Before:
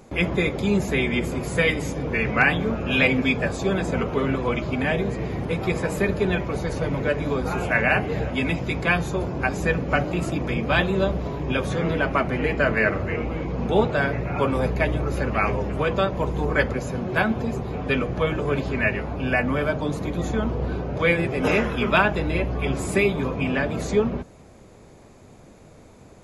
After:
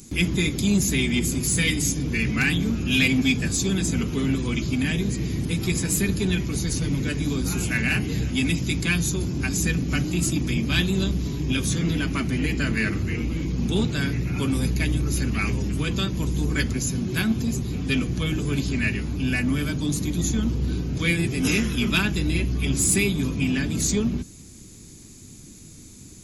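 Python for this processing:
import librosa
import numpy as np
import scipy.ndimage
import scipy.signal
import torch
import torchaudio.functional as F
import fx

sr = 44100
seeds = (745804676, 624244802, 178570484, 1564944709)

p1 = fx.curve_eq(x, sr, hz=(310.0, 580.0, 6500.0), db=(0, -22, 4))
p2 = 10.0 ** (-27.5 / 20.0) * np.tanh(p1 / 10.0 ** (-27.5 / 20.0))
p3 = p1 + F.gain(torch.from_numpy(p2), -5.0).numpy()
y = fx.high_shelf(p3, sr, hz=3000.0, db=10.0)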